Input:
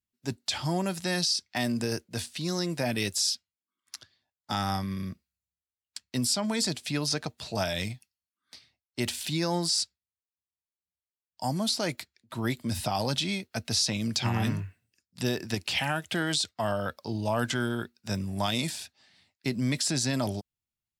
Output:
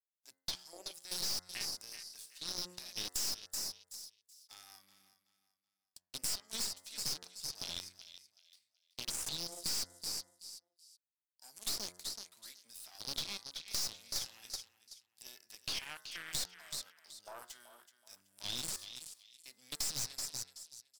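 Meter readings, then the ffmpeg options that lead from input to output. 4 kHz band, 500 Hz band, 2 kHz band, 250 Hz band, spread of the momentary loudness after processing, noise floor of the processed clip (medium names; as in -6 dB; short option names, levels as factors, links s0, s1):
-8.5 dB, -23.0 dB, -16.0 dB, -27.0 dB, 18 LU, under -85 dBFS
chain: -filter_complex "[0:a]aeval=exprs='if(lt(val(0),0),0.251*val(0),val(0))':c=same,aderivative,acrusher=bits=5:mode=log:mix=0:aa=0.000001,afwtdn=0.00631,aecho=1:1:377|754|1131:0.2|0.0579|0.0168,adynamicequalizer=threshold=0.00316:dfrequency=5200:dqfactor=0.91:tfrequency=5200:tqfactor=0.91:attack=5:release=100:ratio=0.375:range=3:mode=boostabove:tftype=bell,acrossover=split=210|3000[s0][s1][s2];[s1]acompressor=threshold=0.00282:ratio=3[s3];[s0][s3][s2]amix=inputs=3:normalize=0,aeval=exprs='(tanh(70.8*val(0)+0.65)-tanh(0.65))/70.8':c=same,bandreject=f=89.59:t=h:w=4,bandreject=f=179.18:t=h:w=4,bandreject=f=268.77:t=h:w=4,bandreject=f=358.36:t=h:w=4,bandreject=f=447.95:t=h:w=4,bandreject=f=537.54:t=h:w=4,bandreject=f=627.13:t=h:w=4,bandreject=f=716.72:t=h:w=4,bandreject=f=806.31:t=h:w=4,bandreject=f=895.9:t=h:w=4,bandreject=f=985.49:t=h:w=4,bandreject=f=1075.08:t=h:w=4,bandreject=f=1164.67:t=h:w=4,bandreject=f=1254.26:t=h:w=4,bandreject=f=1343.85:t=h:w=4,bandreject=f=1433.44:t=h:w=4,bandreject=f=1523.03:t=h:w=4,bandreject=f=1612.62:t=h:w=4,bandreject=f=1702.21:t=h:w=4,bandreject=f=1791.8:t=h:w=4,bandreject=f=1881.39:t=h:w=4,bandreject=f=1970.98:t=h:w=4,bandreject=f=2060.57:t=h:w=4,acompressor=threshold=0.00631:ratio=3,volume=2.82"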